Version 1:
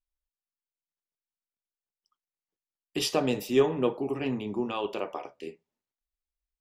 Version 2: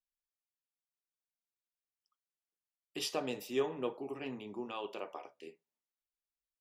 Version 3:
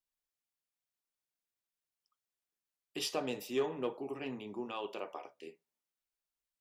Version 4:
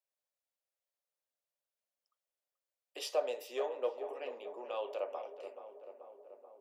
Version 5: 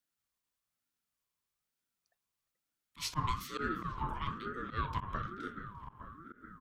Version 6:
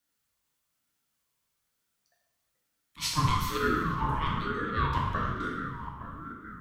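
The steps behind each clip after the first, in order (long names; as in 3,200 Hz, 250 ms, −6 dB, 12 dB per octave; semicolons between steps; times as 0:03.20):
low-shelf EQ 230 Hz −10 dB; level −8 dB
soft clipping −23 dBFS, distortion −22 dB; level +1 dB
four-pole ladder high-pass 510 Hz, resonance 70%; feedback echo with a low-pass in the loop 433 ms, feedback 71%, low-pass 1,700 Hz, level −10.5 dB; level +7 dB
volume swells 103 ms; single-tap delay 347 ms −20.5 dB; ring modulator whose carrier an LFO sweeps 650 Hz, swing 30%, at 1.1 Hz; level +7.5 dB
dense smooth reverb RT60 0.99 s, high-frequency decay 0.95×, DRR −1.5 dB; level +5 dB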